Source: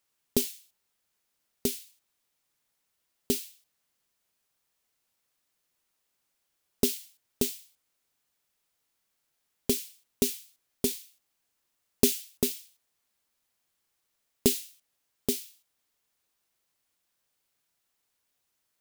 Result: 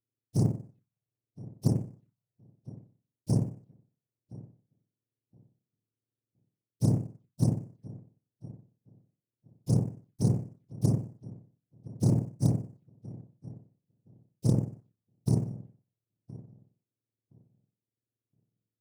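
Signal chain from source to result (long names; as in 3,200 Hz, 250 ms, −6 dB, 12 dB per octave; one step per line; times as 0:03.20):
frequency axis turned over on the octave scale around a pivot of 1,500 Hz
noise gate with hold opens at −53 dBFS
reversed playback
downward compressor 10 to 1, threshold −21 dBFS, peak gain reduction 13 dB
reversed playback
floating-point word with a short mantissa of 4 bits
phaser swept by the level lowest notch 170 Hz, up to 3,600 Hz, full sweep at −31 dBFS
amplitude modulation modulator 33 Hz, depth 30%
on a send: feedback echo with a low-pass in the loop 1,018 ms, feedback 18%, low-pass 1,700 Hz, level −19 dB
on the sum: highs frequency-modulated by the lows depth 0.42 ms
level +2 dB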